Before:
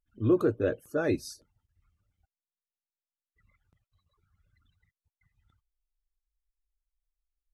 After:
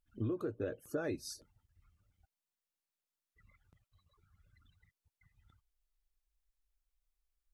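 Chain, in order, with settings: compression 16:1, threshold -35 dBFS, peak gain reduction 17 dB; trim +1.5 dB

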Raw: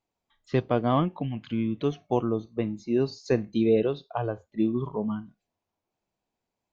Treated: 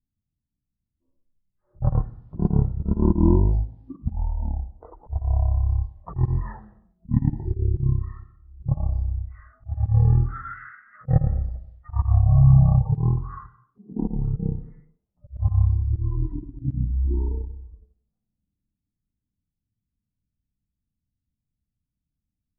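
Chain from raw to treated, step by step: level-controlled noise filter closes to 480 Hz, open at -24.5 dBFS; wide varispeed 0.298×; slow attack 108 ms; trim +6.5 dB

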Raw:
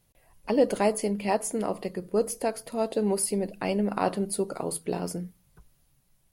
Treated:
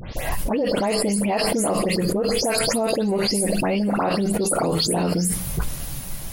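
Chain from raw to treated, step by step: delay that grows with frequency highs late, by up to 167 ms; level flattener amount 100%; trim -4 dB

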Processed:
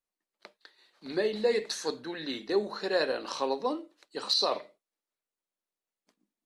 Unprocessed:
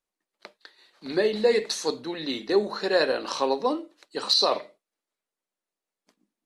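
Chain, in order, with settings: 1.71–2.39 s: peaking EQ 1.6 kHz +11.5 dB 0.27 oct; trim -5.5 dB

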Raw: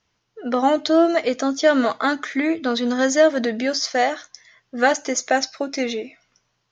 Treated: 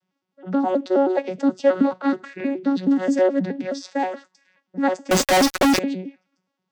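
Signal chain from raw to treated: vocoder on a broken chord bare fifth, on F#3, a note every 106 ms; 5.11–5.79 s: fuzz box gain 53 dB, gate -47 dBFS; trim -1 dB

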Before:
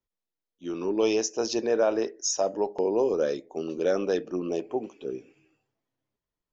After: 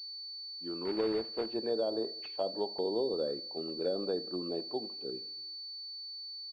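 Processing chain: low-pass that closes with the level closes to 650 Hz, closed at -19.5 dBFS; 0.85–1.46 s: companded quantiser 4-bit; on a send: feedback delay 82 ms, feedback 54%, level -20.5 dB; on the sum: class-D stage that switches slowly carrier 4.5 kHz; trim -7.5 dB

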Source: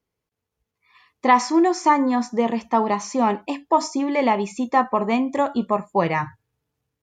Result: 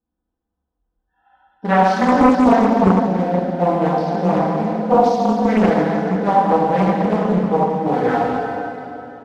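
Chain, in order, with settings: local Wiener filter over 15 samples; tape speed -24%; comb 4 ms, depth 72%; plate-style reverb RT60 3.1 s, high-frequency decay 0.85×, DRR -9 dB; loudspeaker Doppler distortion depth 0.81 ms; trim -6 dB

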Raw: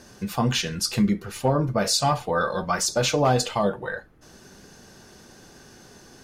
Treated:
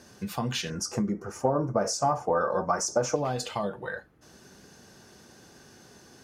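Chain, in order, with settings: high-pass 62 Hz; compression, threshold -22 dBFS, peak gain reduction 6.5 dB; 0.70–3.16 s: FFT filter 180 Hz 0 dB, 290 Hz +5 dB, 770 Hz +7 dB, 1.3 kHz +4 dB, 3.9 kHz -21 dB, 5.7 kHz +4 dB, 13 kHz -11 dB; trim -4 dB

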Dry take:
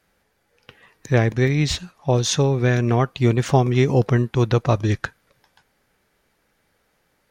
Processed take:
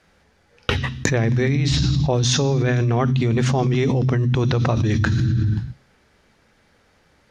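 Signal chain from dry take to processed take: low-pass 7.1 kHz 12 dB/octave; gate -48 dBFS, range -25 dB; on a send at -11 dB: FFT filter 110 Hz 0 dB, 290 Hz +5 dB, 530 Hz -29 dB, 5 kHz +8 dB + reverberation RT60 1.1 s, pre-delay 3 ms; on the sum: level flattener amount 100%; trim -7.5 dB

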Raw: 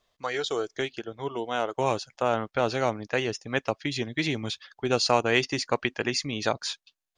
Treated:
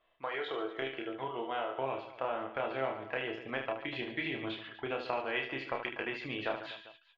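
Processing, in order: FFT filter 190 Hz 0 dB, 640 Hz +9 dB, 3.1 kHz +8 dB, 5.7 kHz -25 dB; compression 2.5:1, threshold -29 dBFS, peak gain reduction 14.5 dB; feedback comb 330 Hz, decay 0.24 s, harmonics all, mix 70%; on a send: reverse bouncing-ball echo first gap 30 ms, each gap 1.5×, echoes 5

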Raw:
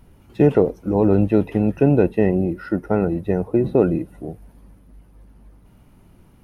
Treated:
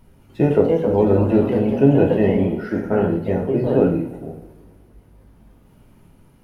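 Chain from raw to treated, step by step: ever faster or slower copies 331 ms, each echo +2 st, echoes 2, each echo -6 dB; two-slope reverb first 0.57 s, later 2.3 s, from -20 dB, DRR 1.5 dB; trim -2.5 dB

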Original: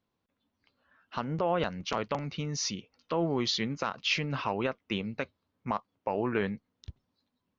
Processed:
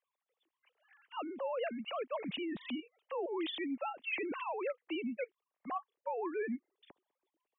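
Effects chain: formants replaced by sine waves; peaking EQ 1.4 kHz -7 dB 0.31 oct; reverse; compression 6:1, threshold -36 dBFS, peak gain reduction 12 dB; reverse; trim +1 dB

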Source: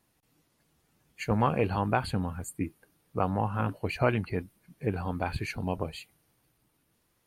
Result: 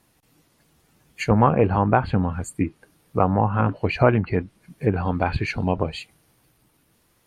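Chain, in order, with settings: low-pass that closes with the level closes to 1.6 kHz, closed at -24 dBFS; trim +9 dB

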